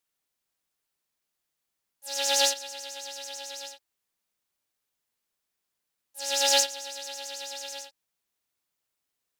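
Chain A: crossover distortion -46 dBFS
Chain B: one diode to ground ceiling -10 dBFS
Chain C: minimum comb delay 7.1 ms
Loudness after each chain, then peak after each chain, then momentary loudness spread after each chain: -27.0, -28.5, -29.5 LUFS; -9.5, -10.0, -11.0 dBFS; 20, 19, 18 LU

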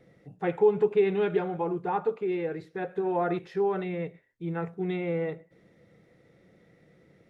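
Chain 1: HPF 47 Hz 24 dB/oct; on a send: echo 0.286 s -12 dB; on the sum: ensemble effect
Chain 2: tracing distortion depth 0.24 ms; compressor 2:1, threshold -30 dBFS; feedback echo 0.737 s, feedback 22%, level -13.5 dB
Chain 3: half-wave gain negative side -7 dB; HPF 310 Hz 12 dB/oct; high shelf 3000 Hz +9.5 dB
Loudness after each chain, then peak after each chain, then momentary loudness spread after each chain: -31.5, -33.0, -32.5 LUFS; -11.0, -19.5, -14.5 dBFS; 14, 15, 11 LU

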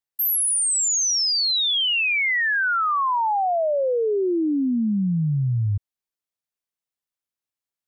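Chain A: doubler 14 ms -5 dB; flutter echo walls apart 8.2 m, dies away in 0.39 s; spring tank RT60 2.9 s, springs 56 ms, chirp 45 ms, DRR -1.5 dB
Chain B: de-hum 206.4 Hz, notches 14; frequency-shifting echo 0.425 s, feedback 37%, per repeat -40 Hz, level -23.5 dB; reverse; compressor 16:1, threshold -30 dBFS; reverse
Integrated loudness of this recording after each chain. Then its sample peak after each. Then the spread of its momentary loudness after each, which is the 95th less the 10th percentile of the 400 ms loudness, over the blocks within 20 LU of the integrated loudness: -15.5, -30.5 LUFS; -3.5, -23.5 dBFS; 8, 5 LU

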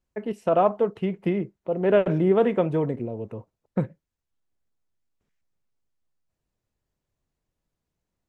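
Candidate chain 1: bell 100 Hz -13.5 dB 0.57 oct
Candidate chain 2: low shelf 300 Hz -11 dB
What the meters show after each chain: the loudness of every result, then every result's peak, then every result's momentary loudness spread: -24.5, -28.0 LUFS; -7.5, -10.0 dBFS; 14, 15 LU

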